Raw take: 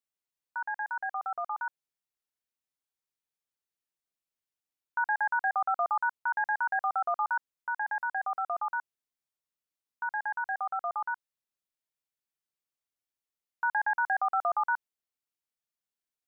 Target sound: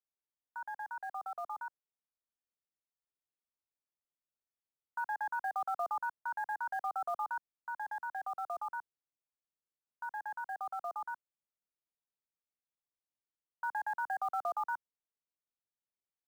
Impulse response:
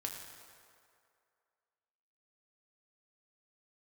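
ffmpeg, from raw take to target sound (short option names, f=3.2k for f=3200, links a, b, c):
-filter_complex "[0:a]lowpass=1.2k,acrossover=split=220|370|860[a][b][c][d];[c]acrusher=bits=5:mode=log:mix=0:aa=0.000001[e];[a][b][e][d]amix=inputs=4:normalize=0,volume=-5dB"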